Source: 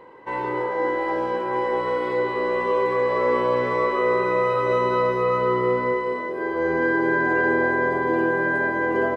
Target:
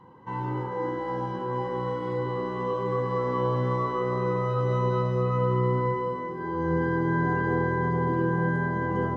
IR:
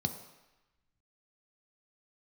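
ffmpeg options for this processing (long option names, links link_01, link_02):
-filter_complex "[0:a]asplit=2[link_01][link_02];[1:a]atrim=start_sample=2205,lowshelf=frequency=260:gain=8.5[link_03];[link_02][link_03]afir=irnorm=-1:irlink=0,volume=-4.5dB[link_04];[link_01][link_04]amix=inputs=2:normalize=0,volume=-7.5dB"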